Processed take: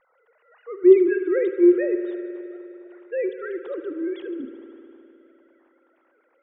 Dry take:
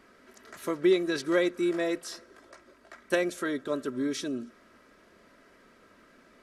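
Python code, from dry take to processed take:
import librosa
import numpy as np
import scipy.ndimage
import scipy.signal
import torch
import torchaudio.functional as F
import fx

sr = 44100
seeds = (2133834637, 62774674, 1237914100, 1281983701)

y = fx.sine_speech(x, sr)
y = fx.transient(y, sr, attack_db=-5, sustain_db=4)
y = fx.tilt_eq(y, sr, slope=-2.5)
y = fx.rev_spring(y, sr, rt60_s=3.1, pass_ms=(51,), chirp_ms=75, drr_db=8.5)
y = y * librosa.db_to_amplitude(5.5)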